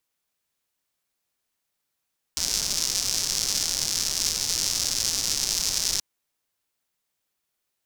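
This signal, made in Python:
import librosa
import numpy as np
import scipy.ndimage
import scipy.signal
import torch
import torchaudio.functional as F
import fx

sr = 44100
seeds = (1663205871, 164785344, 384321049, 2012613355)

y = fx.rain(sr, seeds[0], length_s=3.63, drops_per_s=230.0, hz=5500.0, bed_db=-13.0)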